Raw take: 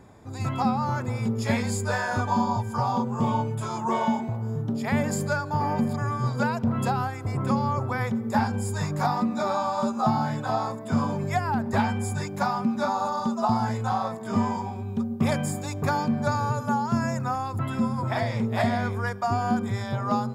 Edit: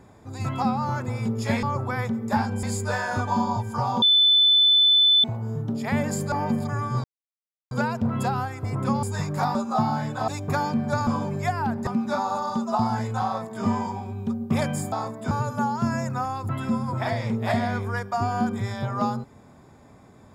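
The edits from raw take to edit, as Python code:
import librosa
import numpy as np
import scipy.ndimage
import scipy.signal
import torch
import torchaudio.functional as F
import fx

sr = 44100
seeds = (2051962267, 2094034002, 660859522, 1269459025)

y = fx.edit(x, sr, fx.bleep(start_s=3.02, length_s=1.22, hz=3510.0, db=-14.0),
    fx.cut(start_s=5.32, length_s=0.29),
    fx.insert_silence(at_s=6.33, length_s=0.67),
    fx.move(start_s=7.65, length_s=1.0, to_s=1.63),
    fx.cut(start_s=9.17, length_s=0.66),
    fx.swap(start_s=10.56, length_s=0.39, other_s=15.62, other_length_s=0.79),
    fx.cut(start_s=11.75, length_s=0.82), tone=tone)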